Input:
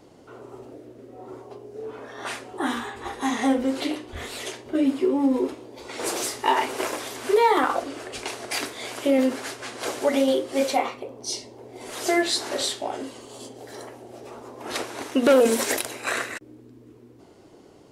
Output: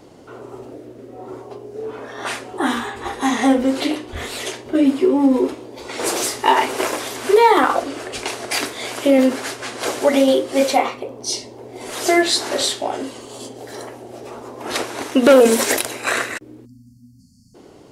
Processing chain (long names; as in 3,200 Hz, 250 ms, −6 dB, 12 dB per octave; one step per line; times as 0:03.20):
time-frequency box erased 0:16.66–0:17.55, 270–4,300 Hz
level +6.5 dB